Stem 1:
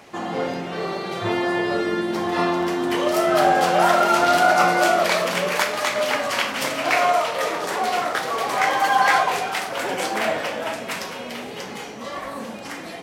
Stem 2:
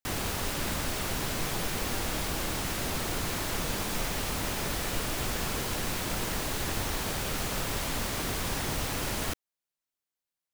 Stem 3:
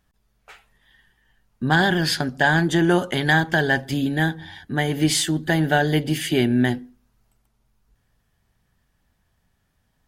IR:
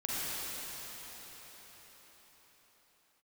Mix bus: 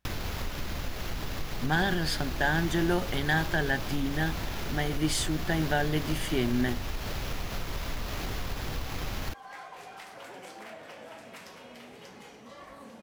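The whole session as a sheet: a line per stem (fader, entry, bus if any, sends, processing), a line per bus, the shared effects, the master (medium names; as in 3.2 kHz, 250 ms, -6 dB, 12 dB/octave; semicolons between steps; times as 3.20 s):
-16.0 dB, 0.45 s, bus A, no send, echo send -13 dB, compression 4:1, threshold -27 dBFS, peak gain reduction 12.5 dB
+1.5 dB, 0.00 s, bus A, no send, no echo send, sample-rate reducer 8.7 kHz, jitter 0%
-9.0 dB, 0.00 s, no bus, no send, no echo send, none
bus A: 0.0 dB, bass shelf 95 Hz +11.5 dB; compression 4:1, threshold -31 dBFS, peak gain reduction 12.5 dB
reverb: none
echo: delay 588 ms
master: none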